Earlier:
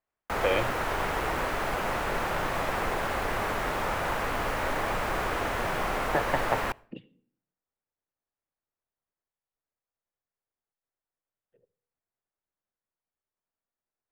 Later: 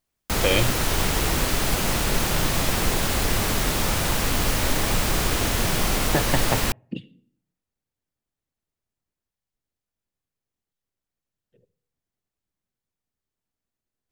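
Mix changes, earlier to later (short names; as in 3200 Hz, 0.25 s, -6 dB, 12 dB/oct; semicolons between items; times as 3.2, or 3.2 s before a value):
background: send off; master: remove three-band isolator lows -13 dB, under 440 Hz, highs -19 dB, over 2100 Hz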